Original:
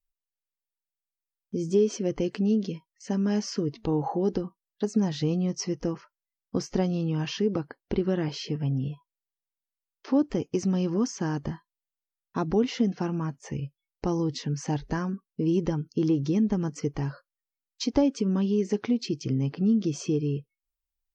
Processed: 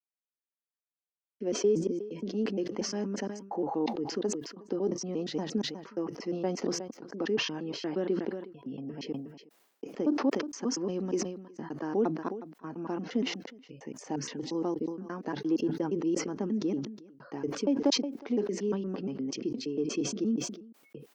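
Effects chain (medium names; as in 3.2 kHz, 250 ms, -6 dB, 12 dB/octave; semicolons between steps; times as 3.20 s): slices played last to first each 117 ms, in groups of 6; high-pass 240 Hz 24 dB/octave; treble shelf 2.2 kHz -11 dB; hard clipper -13.5 dBFS, distortion -45 dB; on a send: delay 364 ms -23.5 dB; on the sum: decay stretcher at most 73 dB/s; trim -2.5 dB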